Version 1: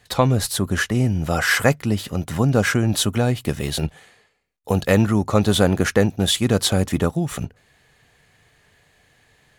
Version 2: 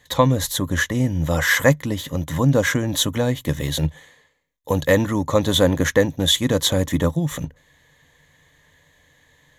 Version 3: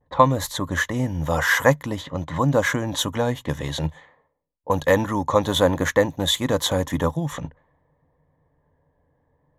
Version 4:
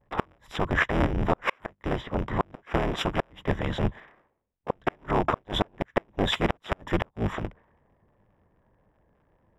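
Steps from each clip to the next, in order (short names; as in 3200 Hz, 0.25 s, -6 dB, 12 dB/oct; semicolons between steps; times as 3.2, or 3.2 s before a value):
ripple EQ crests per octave 1.1, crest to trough 10 dB; gain -1 dB
vibrato 0.53 Hz 36 cents; low-pass opened by the level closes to 490 Hz, open at -18 dBFS; bell 930 Hz +9.5 dB 1.3 oct; gain -4.5 dB
cycle switcher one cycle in 3, inverted; polynomial smoothing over 25 samples; flipped gate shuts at -11 dBFS, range -39 dB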